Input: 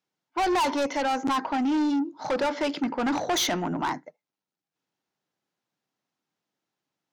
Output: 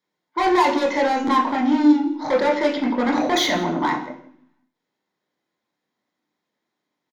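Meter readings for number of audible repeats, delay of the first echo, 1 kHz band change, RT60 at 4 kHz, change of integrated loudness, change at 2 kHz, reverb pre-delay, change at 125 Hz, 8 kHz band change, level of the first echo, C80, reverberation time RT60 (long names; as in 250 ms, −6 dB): 1, 167 ms, +6.0 dB, 0.70 s, +7.0 dB, +7.0 dB, 24 ms, +3.5 dB, −1.0 dB, −19.5 dB, 11.5 dB, 0.65 s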